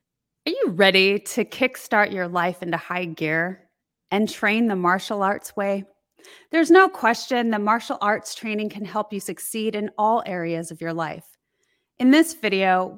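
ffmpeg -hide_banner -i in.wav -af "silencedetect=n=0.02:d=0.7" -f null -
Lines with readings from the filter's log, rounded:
silence_start: 11.19
silence_end: 12.00 | silence_duration: 0.81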